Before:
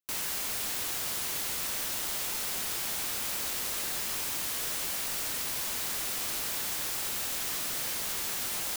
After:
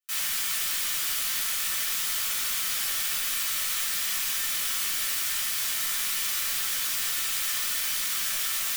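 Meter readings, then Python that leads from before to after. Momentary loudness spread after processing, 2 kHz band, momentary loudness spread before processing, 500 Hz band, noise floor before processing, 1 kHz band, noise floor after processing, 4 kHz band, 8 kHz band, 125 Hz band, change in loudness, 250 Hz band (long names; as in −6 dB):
0 LU, +6.0 dB, 0 LU, −7.0 dB, −34 dBFS, +1.5 dB, −29 dBFS, +6.0 dB, +5.0 dB, can't be measured, +5.0 dB, −7.0 dB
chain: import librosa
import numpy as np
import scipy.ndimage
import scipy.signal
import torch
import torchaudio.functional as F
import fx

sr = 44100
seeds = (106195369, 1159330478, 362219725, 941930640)

y = scipy.signal.sosfilt(scipy.signal.butter(4, 1300.0, 'highpass', fs=sr, output='sos'), x)
y = fx.mod_noise(y, sr, seeds[0], snr_db=15)
y = fx.room_shoebox(y, sr, seeds[1], volume_m3=430.0, walls='furnished', distance_m=6.2)
y = y * 10.0 ** (-2.5 / 20.0)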